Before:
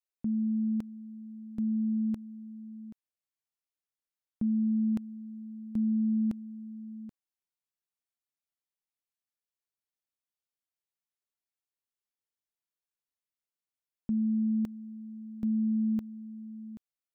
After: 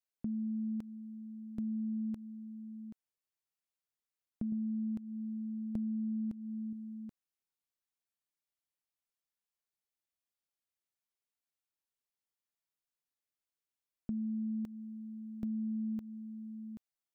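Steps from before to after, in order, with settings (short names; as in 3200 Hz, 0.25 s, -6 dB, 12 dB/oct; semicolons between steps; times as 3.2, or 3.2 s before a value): 4.52–6.73 low shelf 440 Hz +6.5 dB; compressor 12:1, threshold -32 dBFS, peak gain reduction 11.5 dB; gain -2 dB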